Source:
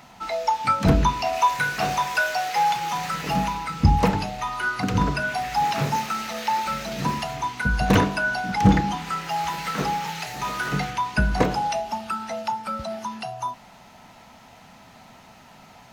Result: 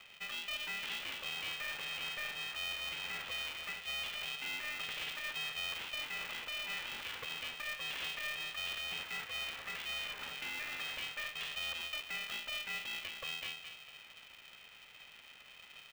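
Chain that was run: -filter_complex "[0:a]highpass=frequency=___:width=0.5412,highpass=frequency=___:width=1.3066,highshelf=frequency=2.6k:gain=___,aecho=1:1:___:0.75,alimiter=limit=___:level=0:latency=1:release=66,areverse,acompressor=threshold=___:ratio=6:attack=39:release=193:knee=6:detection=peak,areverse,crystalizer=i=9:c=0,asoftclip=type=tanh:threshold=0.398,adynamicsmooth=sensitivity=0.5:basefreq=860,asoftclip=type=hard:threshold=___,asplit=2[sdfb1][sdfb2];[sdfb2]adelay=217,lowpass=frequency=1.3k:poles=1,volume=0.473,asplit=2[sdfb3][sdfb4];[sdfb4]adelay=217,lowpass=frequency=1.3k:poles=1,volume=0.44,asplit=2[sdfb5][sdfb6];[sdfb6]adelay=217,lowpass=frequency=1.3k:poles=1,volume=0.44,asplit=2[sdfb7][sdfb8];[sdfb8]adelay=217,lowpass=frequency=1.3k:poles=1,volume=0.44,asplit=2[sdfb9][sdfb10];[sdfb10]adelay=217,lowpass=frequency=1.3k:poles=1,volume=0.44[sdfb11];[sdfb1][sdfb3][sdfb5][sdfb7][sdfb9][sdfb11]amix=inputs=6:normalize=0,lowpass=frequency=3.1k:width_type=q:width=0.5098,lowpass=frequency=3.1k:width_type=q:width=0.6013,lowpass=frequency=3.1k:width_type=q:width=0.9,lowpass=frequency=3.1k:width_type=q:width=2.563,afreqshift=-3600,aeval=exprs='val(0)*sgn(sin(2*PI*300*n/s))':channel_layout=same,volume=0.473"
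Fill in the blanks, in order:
490, 490, 5, 2.5, 0.178, 0.02, 0.0282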